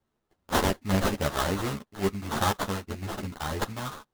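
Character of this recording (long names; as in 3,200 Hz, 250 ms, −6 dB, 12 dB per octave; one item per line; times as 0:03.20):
aliases and images of a low sample rate 2,400 Hz, jitter 20%
sample-and-hold tremolo
a shimmering, thickened sound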